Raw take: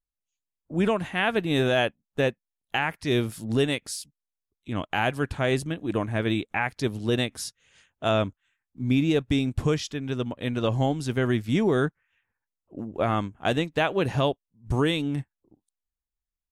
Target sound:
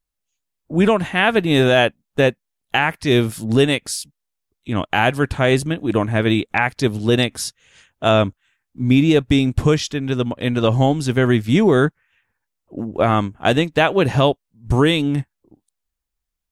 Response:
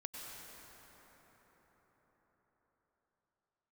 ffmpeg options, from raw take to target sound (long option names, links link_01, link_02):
-af "volume=8.5dB" -ar 44100 -c:a aac -b:a 192k